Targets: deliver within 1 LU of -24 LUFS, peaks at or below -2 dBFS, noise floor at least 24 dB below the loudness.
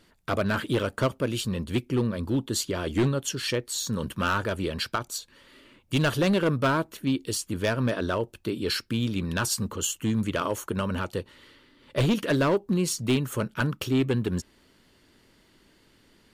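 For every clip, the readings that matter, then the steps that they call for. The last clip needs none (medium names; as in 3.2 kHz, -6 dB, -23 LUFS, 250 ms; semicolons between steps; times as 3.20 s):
clipped samples 1.3%; clipping level -18.0 dBFS; loudness -27.5 LUFS; peak level -18.0 dBFS; loudness target -24.0 LUFS
-> clip repair -18 dBFS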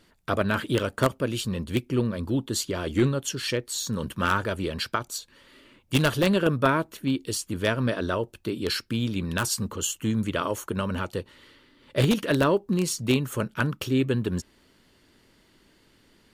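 clipped samples 0.0%; loudness -26.5 LUFS; peak level -9.0 dBFS; loudness target -24.0 LUFS
-> trim +2.5 dB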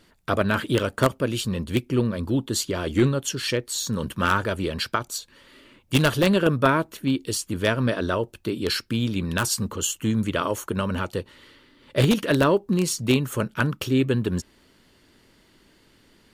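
loudness -24.0 LUFS; peak level -6.5 dBFS; noise floor -59 dBFS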